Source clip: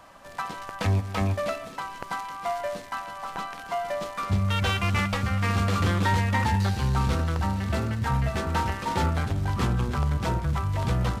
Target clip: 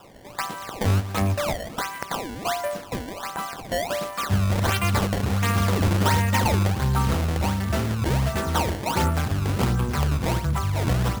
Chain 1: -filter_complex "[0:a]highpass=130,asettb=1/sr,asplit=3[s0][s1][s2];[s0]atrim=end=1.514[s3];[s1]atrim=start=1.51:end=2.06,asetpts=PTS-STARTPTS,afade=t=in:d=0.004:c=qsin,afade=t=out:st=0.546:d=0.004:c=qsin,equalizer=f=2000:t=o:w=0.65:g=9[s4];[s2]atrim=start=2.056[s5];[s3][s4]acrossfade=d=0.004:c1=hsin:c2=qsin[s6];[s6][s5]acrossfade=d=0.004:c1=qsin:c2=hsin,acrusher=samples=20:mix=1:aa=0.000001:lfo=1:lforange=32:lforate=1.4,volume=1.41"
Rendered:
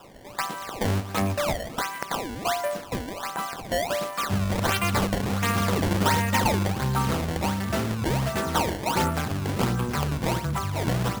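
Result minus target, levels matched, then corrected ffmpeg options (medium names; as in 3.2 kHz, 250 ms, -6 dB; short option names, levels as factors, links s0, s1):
125 Hz band -3.0 dB
-filter_complex "[0:a]highpass=57,asettb=1/sr,asplit=3[s0][s1][s2];[s0]atrim=end=1.514[s3];[s1]atrim=start=1.51:end=2.06,asetpts=PTS-STARTPTS,afade=t=in:d=0.004:c=qsin,afade=t=out:st=0.546:d=0.004:c=qsin,equalizer=f=2000:t=o:w=0.65:g=9[s4];[s2]atrim=start=2.056[s5];[s3][s4]acrossfade=d=0.004:c1=hsin:c2=qsin[s6];[s6][s5]acrossfade=d=0.004:c1=qsin:c2=hsin,acrusher=samples=20:mix=1:aa=0.000001:lfo=1:lforange=32:lforate=1.4,volume=1.41"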